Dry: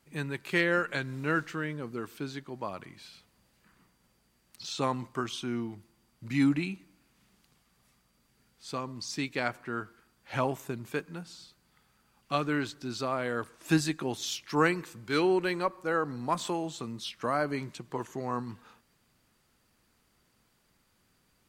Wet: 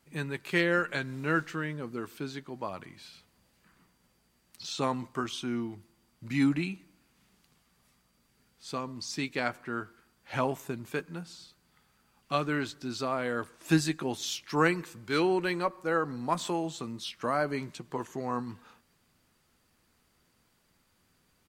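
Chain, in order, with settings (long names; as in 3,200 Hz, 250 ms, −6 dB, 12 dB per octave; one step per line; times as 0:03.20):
double-tracking delay 12 ms −13.5 dB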